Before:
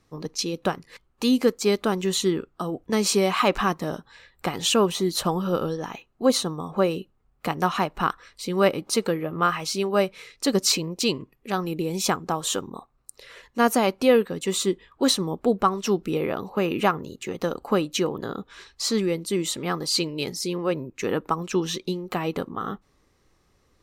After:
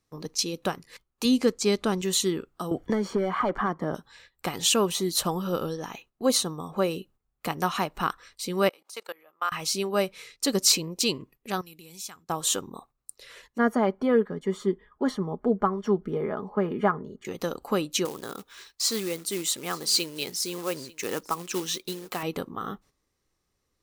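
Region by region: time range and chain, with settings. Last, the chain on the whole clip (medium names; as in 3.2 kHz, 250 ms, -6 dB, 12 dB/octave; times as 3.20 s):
1.25–2.02 s: low-pass 8.5 kHz + bass shelf 160 Hz +8 dB
2.71–3.95 s: overload inside the chain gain 16 dB + Savitzky-Golay filter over 41 samples + three bands compressed up and down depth 100%
8.69–9.52 s: level held to a coarse grid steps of 22 dB + Chebyshev high-pass 830 Hz
11.61–12.30 s: amplifier tone stack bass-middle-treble 5-5-5 + compression 2:1, threshold -40 dBFS + hum notches 50/100/150 Hz
13.58–17.25 s: Savitzky-Golay filter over 41 samples + comb 4.8 ms, depth 51%
18.05–22.23 s: short-mantissa float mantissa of 2-bit + bass shelf 250 Hz -9 dB + delay 893 ms -22 dB
whole clip: gate -50 dBFS, range -10 dB; treble shelf 4.5 kHz +9 dB; trim -4 dB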